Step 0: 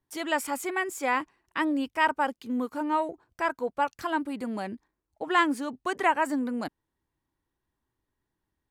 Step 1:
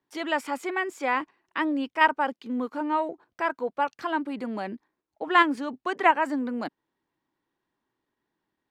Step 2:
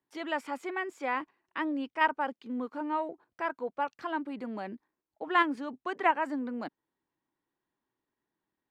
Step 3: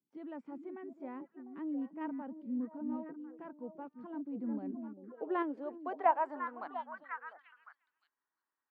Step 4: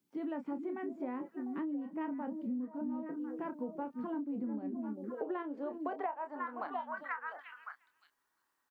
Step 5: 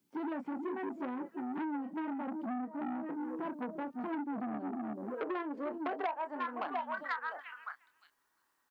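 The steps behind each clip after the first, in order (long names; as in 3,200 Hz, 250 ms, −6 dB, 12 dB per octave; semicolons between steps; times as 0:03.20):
three-way crossover with the lows and the highs turned down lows −20 dB, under 160 Hz, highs −15 dB, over 5,200 Hz; in parallel at −2 dB: output level in coarse steps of 22 dB
high-shelf EQ 5,100 Hz −7 dB; level −5.5 dB
echo through a band-pass that steps 350 ms, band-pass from 220 Hz, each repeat 1.4 octaves, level −3.5 dB; band-pass filter sweep 200 Hz → 1,300 Hz, 0:04.26–0:06.93; level +2 dB
double-tracking delay 28 ms −9 dB; downward compressor 20 to 1, threshold −44 dBFS, peak gain reduction 23.5 dB; level +9.5 dB
saturating transformer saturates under 1,200 Hz; level +3.5 dB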